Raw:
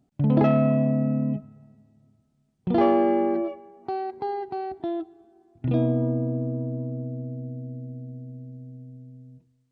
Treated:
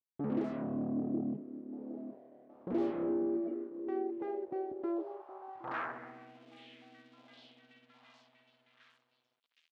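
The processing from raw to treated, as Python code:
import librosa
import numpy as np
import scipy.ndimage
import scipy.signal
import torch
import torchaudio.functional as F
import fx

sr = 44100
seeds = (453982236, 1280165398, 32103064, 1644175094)

p1 = fx.dereverb_blind(x, sr, rt60_s=1.7)
p2 = fx.fold_sine(p1, sr, drive_db=19, ceiling_db=-10.5)
p3 = p1 + (p2 * 10.0 ** (-9.5 / 20.0))
p4 = fx.echo_stepped(p3, sr, ms=765, hz=340.0, octaves=0.7, feedback_pct=70, wet_db=-6.0)
p5 = np.sign(p4) * np.maximum(np.abs(p4) - 10.0 ** (-43.0 / 20.0), 0.0)
p6 = fx.filter_sweep_bandpass(p5, sr, from_hz=310.0, to_hz=3300.0, start_s=4.61, end_s=6.53, q=2.1)
y = p6 * 10.0 ** (-8.5 / 20.0)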